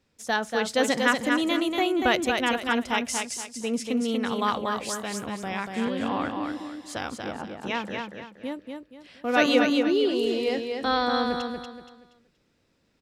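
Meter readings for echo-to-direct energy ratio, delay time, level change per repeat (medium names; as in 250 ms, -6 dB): -4.0 dB, 237 ms, -9.5 dB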